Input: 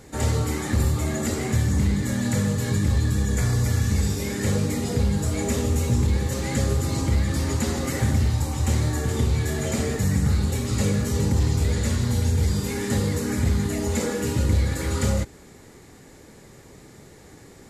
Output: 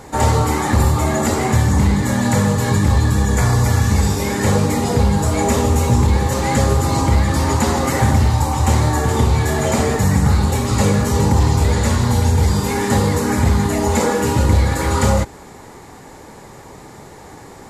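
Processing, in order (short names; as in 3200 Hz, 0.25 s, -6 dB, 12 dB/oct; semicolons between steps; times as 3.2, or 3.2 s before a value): bell 910 Hz +11.5 dB 1 oct; gain +6.5 dB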